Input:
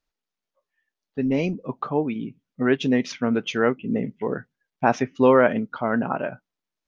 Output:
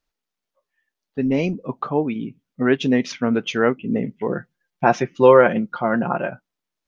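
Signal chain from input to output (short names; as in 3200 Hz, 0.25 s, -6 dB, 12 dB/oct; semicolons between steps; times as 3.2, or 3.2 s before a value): 4.29–6.3 comb 5.7 ms, depth 58%; gain +2.5 dB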